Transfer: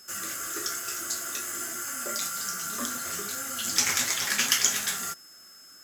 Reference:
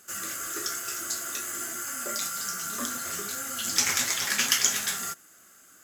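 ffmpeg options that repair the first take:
ffmpeg -i in.wav -af "bandreject=frequency=5200:width=30" out.wav

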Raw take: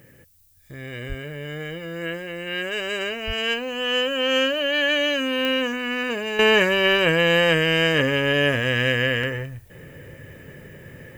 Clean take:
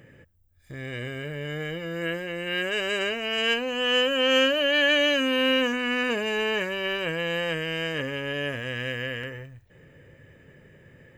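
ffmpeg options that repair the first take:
ffmpeg -i in.wav -filter_complex "[0:a]adeclick=threshold=4,asplit=3[link_01][link_02][link_03];[link_01]afade=type=out:start_time=1.08:duration=0.02[link_04];[link_02]highpass=frequency=140:width=0.5412,highpass=frequency=140:width=1.3066,afade=type=in:start_time=1.08:duration=0.02,afade=type=out:start_time=1.2:duration=0.02[link_05];[link_03]afade=type=in:start_time=1.2:duration=0.02[link_06];[link_04][link_05][link_06]amix=inputs=3:normalize=0,asplit=3[link_07][link_08][link_09];[link_07]afade=type=out:start_time=3.26:duration=0.02[link_10];[link_08]highpass=frequency=140:width=0.5412,highpass=frequency=140:width=1.3066,afade=type=in:start_time=3.26:duration=0.02,afade=type=out:start_time=3.38:duration=0.02[link_11];[link_09]afade=type=in:start_time=3.38:duration=0.02[link_12];[link_10][link_11][link_12]amix=inputs=3:normalize=0,agate=range=-21dB:threshold=-35dB,asetnsamples=nb_out_samples=441:pad=0,asendcmd='6.39 volume volume -10dB',volume=0dB" out.wav

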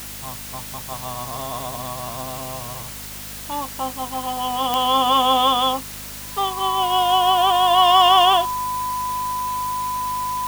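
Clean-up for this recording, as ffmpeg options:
ffmpeg -i in.wav -af "adeclick=threshold=4,bandreject=frequency=51:width_type=h:width=4,bandreject=frequency=102:width_type=h:width=4,bandreject=frequency=153:width_type=h:width=4,bandreject=frequency=204:width_type=h:width=4,bandreject=frequency=255:width_type=h:width=4,bandreject=frequency=1000:width=30,afwtdn=0.018" out.wav

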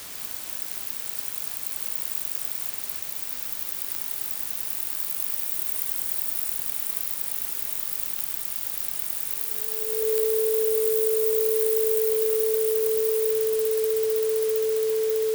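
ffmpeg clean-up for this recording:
ffmpeg -i in.wav -af "adeclick=threshold=4,bandreject=frequency=440:width=30,afftdn=noise_reduction=30:noise_floor=-33" out.wav

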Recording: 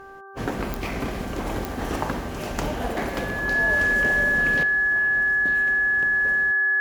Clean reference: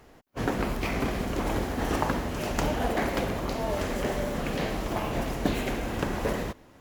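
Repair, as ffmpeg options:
ffmpeg -i in.wav -af "adeclick=threshold=4,bandreject=frequency=391.1:width_type=h:width=4,bandreject=frequency=782.2:width_type=h:width=4,bandreject=frequency=1173.3:width_type=h:width=4,bandreject=frequency=1564.4:width_type=h:width=4,bandreject=frequency=1700:width=30,asetnsamples=nb_out_samples=441:pad=0,asendcmd='4.63 volume volume 12dB',volume=0dB" out.wav

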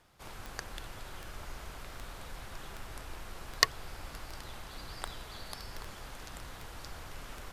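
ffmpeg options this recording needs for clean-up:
ffmpeg -i in.wav -af "adeclick=threshold=4" out.wav

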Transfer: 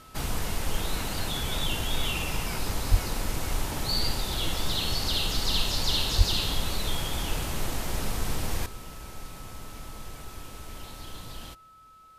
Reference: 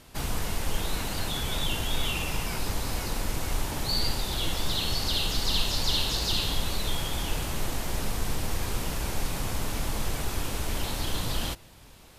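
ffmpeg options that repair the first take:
ffmpeg -i in.wav -filter_complex "[0:a]bandreject=frequency=1300:width=30,asplit=3[link_01][link_02][link_03];[link_01]afade=type=out:start_time=2.9:duration=0.02[link_04];[link_02]highpass=frequency=140:width=0.5412,highpass=frequency=140:width=1.3066,afade=type=in:start_time=2.9:duration=0.02,afade=type=out:start_time=3.02:duration=0.02[link_05];[link_03]afade=type=in:start_time=3.02:duration=0.02[link_06];[link_04][link_05][link_06]amix=inputs=3:normalize=0,asplit=3[link_07][link_08][link_09];[link_07]afade=type=out:start_time=6.17:duration=0.02[link_10];[link_08]highpass=frequency=140:width=0.5412,highpass=frequency=140:width=1.3066,afade=type=in:start_time=6.17:duration=0.02,afade=type=out:start_time=6.29:duration=0.02[link_11];[link_09]afade=type=in:start_time=6.29:duration=0.02[link_12];[link_10][link_11][link_12]amix=inputs=3:normalize=0,asetnsamples=nb_out_samples=441:pad=0,asendcmd='8.66 volume volume 11.5dB',volume=0dB" out.wav

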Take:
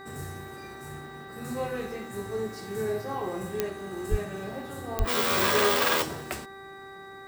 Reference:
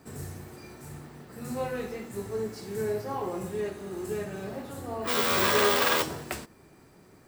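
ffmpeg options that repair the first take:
ffmpeg -i in.wav -filter_complex "[0:a]adeclick=threshold=4,bandreject=frequency=390.1:width_type=h:width=4,bandreject=frequency=780.2:width_type=h:width=4,bandreject=frequency=1170.3:width_type=h:width=4,bandreject=frequency=1560.4:width_type=h:width=4,bandreject=frequency=1950.5:width_type=h:width=4,bandreject=frequency=3800:width=30,asplit=3[link_01][link_02][link_03];[link_01]afade=type=out:start_time=4.1:duration=0.02[link_04];[link_02]highpass=frequency=140:width=0.5412,highpass=frequency=140:width=1.3066,afade=type=in:start_time=4.1:duration=0.02,afade=type=out:start_time=4.22:duration=0.02[link_05];[link_03]afade=type=in:start_time=4.22:duration=0.02[link_06];[link_04][link_05][link_06]amix=inputs=3:normalize=0,asplit=3[link_07][link_08][link_09];[link_07]afade=type=out:start_time=4.98:duration=0.02[link_10];[link_08]highpass=frequency=140:width=0.5412,highpass=frequency=140:width=1.3066,afade=type=in:start_time=4.98:duration=0.02,afade=type=out:start_time=5.1:duration=0.02[link_11];[link_09]afade=type=in:start_time=5.1:duration=0.02[link_12];[link_10][link_11][link_12]amix=inputs=3:normalize=0" out.wav

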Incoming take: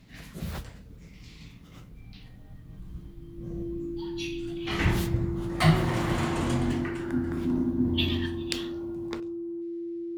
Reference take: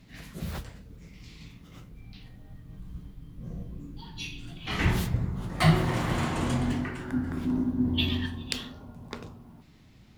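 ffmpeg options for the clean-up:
ffmpeg -i in.wav -af "bandreject=frequency=340:width=30,asetnsamples=nb_out_samples=441:pad=0,asendcmd='9.2 volume volume 12dB',volume=0dB" out.wav

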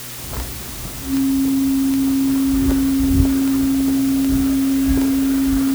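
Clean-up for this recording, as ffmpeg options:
ffmpeg -i in.wav -af "adeclick=threshold=4,bandreject=frequency=122.4:width_type=h:width=4,bandreject=frequency=244.8:width_type=h:width=4,bandreject=frequency=367.2:width_type=h:width=4,bandreject=frequency=270:width=30,afwtdn=0.025" out.wav

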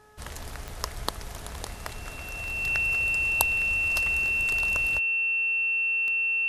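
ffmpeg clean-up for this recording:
ffmpeg -i in.wav -af "adeclick=threshold=4,bandreject=frequency=424.7:width_type=h:width=4,bandreject=frequency=849.4:width_type=h:width=4,bandreject=frequency=1274.1:width_type=h:width=4,bandreject=frequency=1698.8:width_type=h:width=4,bandreject=frequency=2700:width=30" out.wav

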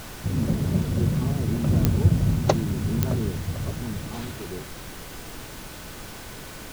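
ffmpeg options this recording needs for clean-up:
ffmpeg -i in.wav -af "adeclick=threshold=4,bandreject=frequency=1500:width=30,afftdn=noise_reduction=30:noise_floor=-39" out.wav

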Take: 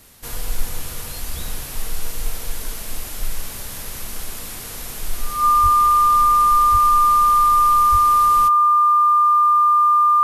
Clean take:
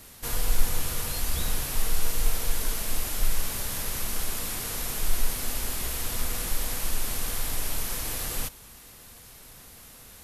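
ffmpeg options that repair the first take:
ffmpeg -i in.wav -filter_complex "[0:a]bandreject=frequency=1200:width=30,asplit=3[link_01][link_02][link_03];[link_01]afade=type=out:start_time=5.62:duration=0.02[link_04];[link_02]highpass=frequency=140:width=0.5412,highpass=frequency=140:width=1.3066,afade=type=in:start_time=5.62:duration=0.02,afade=type=out:start_time=5.74:duration=0.02[link_05];[link_03]afade=type=in:start_time=5.74:duration=0.02[link_06];[link_04][link_05][link_06]amix=inputs=3:normalize=0,asplit=3[link_07][link_08][link_09];[link_07]afade=type=out:start_time=6.71:duration=0.02[link_10];[link_08]highpass=frequency=140:width=0.5412,highpass=frequency=140:width=1.3066,afade=type=in:start_time=6.71:duration=0.02,afade=type=out:start_time=6.83:duration=0.02[link_11];[link_09]afade=type=in:start_time=6.83:duration=0.02[link_12];[link_10][link_11][link_12]amix=inputs=3:normalize=0,asplit=3[link_13][link_14][link_15];[link_13]afade=type=out:start_time=7.91:duration=0.02[link_16];[link_14]highpass=frequency=140:width=0.5412,highpass=frequency=140:width=1.3066,afade=type=in:start_time=7.91:duration=0.02,afade=type=out:start_time=8.03:duration=0.02[link_17];[link_15]afade=type=in:start_time=8.03:duration=0.02[link_18];[link_16][link_17][link_18]amix=inputs=3:normalize=0" out.wav

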